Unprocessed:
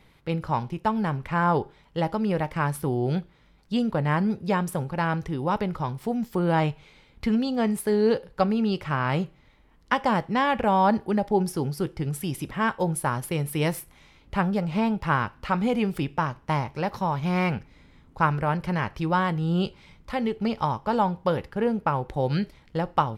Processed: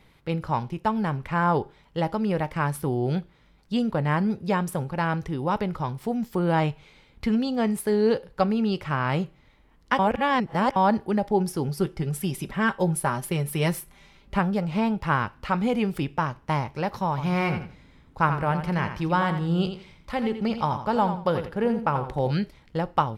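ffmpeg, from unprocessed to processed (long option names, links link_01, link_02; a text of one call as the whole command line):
ffmpeg -i in.wav -filter_complex "[0:a]asettb=1/sr,asplit=3[link_01][link_02][link_03];[link_01]atrim=end=11.684[link_04];[link_02]atrim=start=11.68:end=14.39,asetpts=PTS-STARTPTS,afade=type=in:duration=0.004:curve=qsin,afade=type=out:start_time=2.706:duration=0.004:curve=qsin,aecho=1:1:5.1:0.52,atrim=end_sample=119511[link_05];[link_03]atrim=start=14.386[link_06];[link_04][link_05]acrossfade=duration=0.004:curve1=hsin:curve2=qsin[link_07];[link_07][link_06]acrossfade=duration=0.004:curve1=qsin:curve2=hsin,asettb=1/sr,asplit=3[link_08][link_09][link_10];[link_08]atrim=end=17.094[link_11];[link_09]atrim=start=17.09:end=22.31,asetpts=PTS-STARTPTS,afade=type=in:duration=0.004:curve=qsin,afade=type=out:start_time=5.216:duration=0.004:curve=qsin,aecho=1:1:85|170|255:0.355|0.0887|0.0222,atrim=end_sample=230202[link_12];[link_10]atrim=start=22.306[link_13];[link_11][link_12]acrossfade=duration=0.004:curve1=hsin:curve2=qsin[link_14];[link_14][link_13]acrossfade=duration=0.004:curve1=qsin:curve2=hsin,asplit=3[link_15][link_16][link_17];[link_15]atrim=end=9.992[link_18];[link_16]atrim=start=9.988:end=10.762,asetpts=PTS-STARTPTS,areverse[link_19];[link_17]atrim=start=10.758[link_20];[link_18][link_19]acrossfade=duration=0.004:curve1=hsin:curve2=hsin[link_21];[link_21][link_20]acrossfade=duration=0.004:curve1=hsin:curve2=hsin" out.wav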